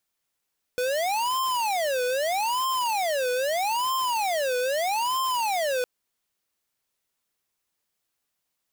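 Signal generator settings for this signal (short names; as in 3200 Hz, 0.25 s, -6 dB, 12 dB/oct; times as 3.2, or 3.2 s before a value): siren wail 495–1050 Hz 0.79/s square -25.5 dBFS 5.06 s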